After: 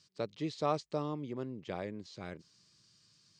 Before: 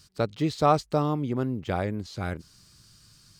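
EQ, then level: cabinet simulation 170–7200 Hz, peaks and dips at 250 Hz -4 dB, 770 Hz -5 dB, 1.4 kHz -7 dB; -8.5 dB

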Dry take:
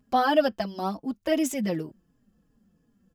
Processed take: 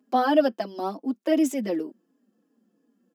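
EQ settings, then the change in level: steep high-pass 250 Hz 36 dB/octave; bass shelf 480 Hz +11 dB; -3.0 dB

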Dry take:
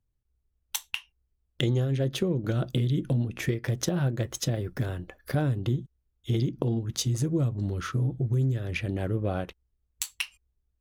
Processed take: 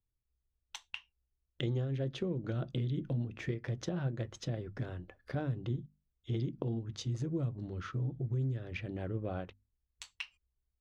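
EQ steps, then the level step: distance through air 130 m; hum notches 50/100/150/200/250 Hz; -8.0 dB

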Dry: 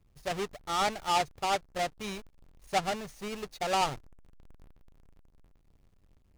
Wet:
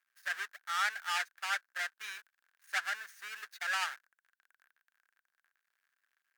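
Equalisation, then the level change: resonant high-pass 1.6 kHz, resonance Q 8.3; treble shelf 8.7 kHz +4 dB; peaking EQ 16 kHz +7.5 dB 0.21 oct; -6.5 dB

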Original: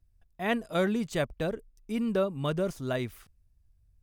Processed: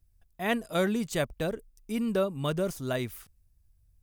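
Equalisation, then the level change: treble shelf 6.7 kHz +10 dB; 0.0 dB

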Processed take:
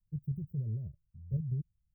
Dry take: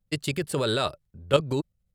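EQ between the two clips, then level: inverse Chebyshev band-stop 960–8600 Hz, stop band 70 dB; dynamic bell 120 Hz, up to +5 dB, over -41 dBFS, Q 1.1; static phaser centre 680 Hz, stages 4; -3.0 dB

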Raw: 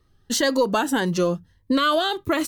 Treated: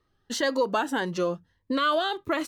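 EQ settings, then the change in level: low-pass 2.9 kHz 6 dB/octave; bass shelf 240 Hz -11.5 dB; -2.0 dB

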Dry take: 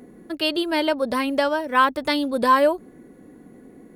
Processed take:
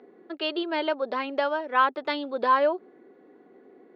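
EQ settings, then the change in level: cabinet simulation 370–4100 Hz, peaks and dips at 390 Hz +9 dB, 760 Hz +5 dB, 1.3 kHz +4 dB; -6.0 dB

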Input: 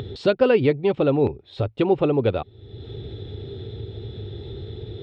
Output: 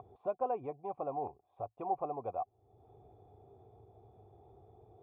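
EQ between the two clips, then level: cascade formant filter a; 0.0 dB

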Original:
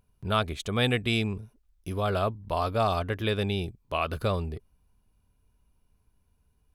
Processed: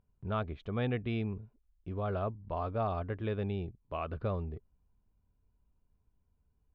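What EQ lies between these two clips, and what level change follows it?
distance through air 100 m; tape spacing loss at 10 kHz 31 dB; treble shelf 6.3 kHz -8 dB; -5.0 dB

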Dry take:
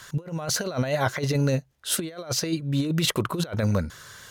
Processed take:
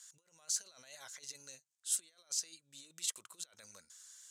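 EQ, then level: band-pass filter 7.7 kHz, Q 3; -2.0 dB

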